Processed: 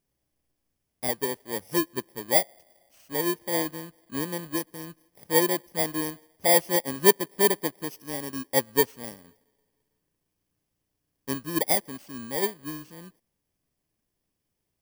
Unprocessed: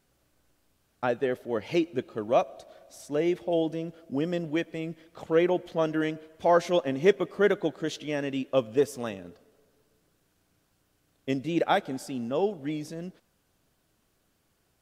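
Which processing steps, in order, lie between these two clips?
bit-reversed sample order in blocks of 32 samples; upward expansion 1.5:1, over -41 dBFS; trim +3.5 dB

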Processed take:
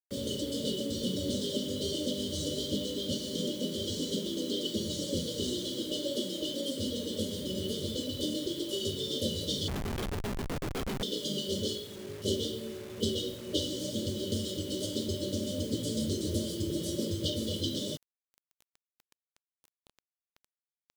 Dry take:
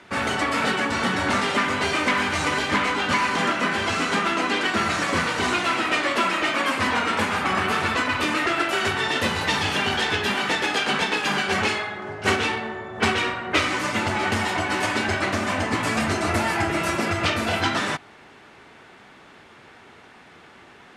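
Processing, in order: FFT band-reject 620–2900 Hz; bit crusher 7-bit; 9.68–11.03 s: Schmitt trigger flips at -23.5 dBFS; trim -6 dB

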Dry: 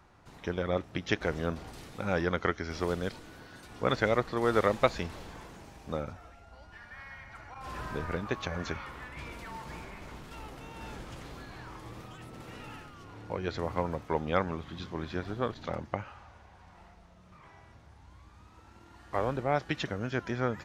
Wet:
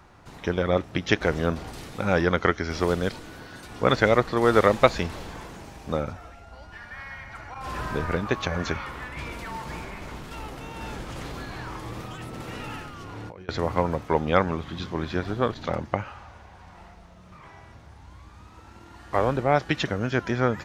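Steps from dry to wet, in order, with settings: 11.09–13.49 s: compressor with a negative ratio -44 dBFS, ratio -1; trim +7.5 dB

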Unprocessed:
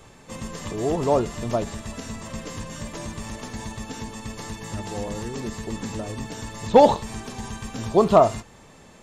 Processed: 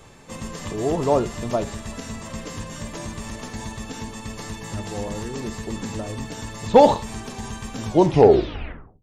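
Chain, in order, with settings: tape stop on the ending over 1.17 s; on a send: low-pass 7.5 kHz + reverberation, pre-delay 8 ms, DRR 13 dB; on the sum: trim +1 dB

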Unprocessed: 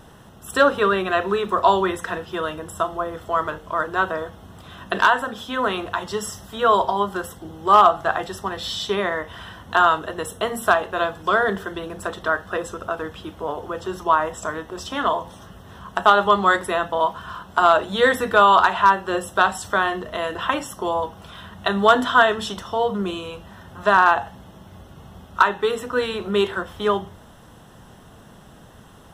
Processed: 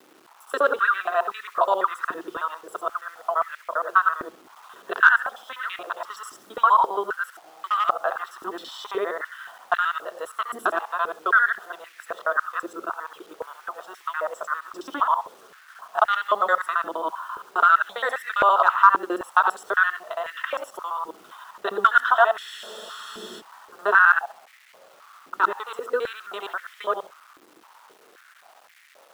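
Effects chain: time reversed locally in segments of 67 ms; peaking EQ 1.3 kHz +9 dB 0.59 oct; bit crusher 7-bit; spectral freeze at 22.40 s, 0.99 s; step-sequenced high-pass 3.8 Hz 330–2000 Hz; trim -11.5 dB

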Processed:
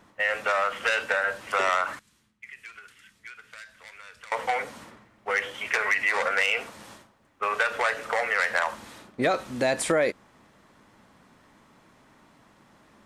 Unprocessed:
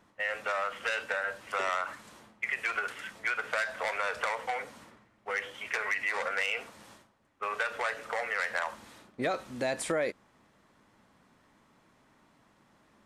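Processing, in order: 1.99–4.32 s: amplifier tone stack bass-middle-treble 6-0-2; trim +7 dB

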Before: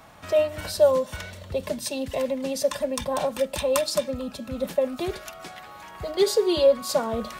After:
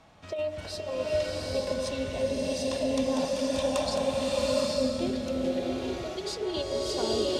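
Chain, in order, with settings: low-pass 6 kHz 12 dB/octave; peaking EQ 1.4 kHz -5.5 dB 1.5 oct; de-hum 61.59 Hz, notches 37; compressor with a negative ratio -24 dBFS, ratio -0.5; swelling reverb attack 850 ms, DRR -4.5 dB; trim -6 dB

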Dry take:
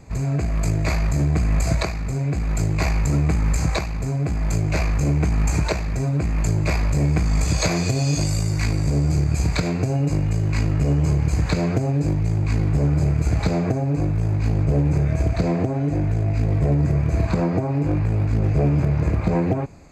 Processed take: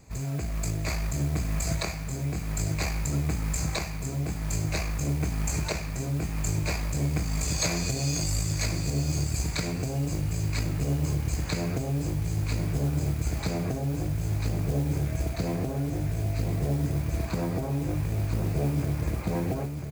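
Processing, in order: treble shelf 4.1 kHz +10.5 dB; modulation noise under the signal 22 dB; on a send: delay 994 ms -7 dB; on the sum: trim -9 dB

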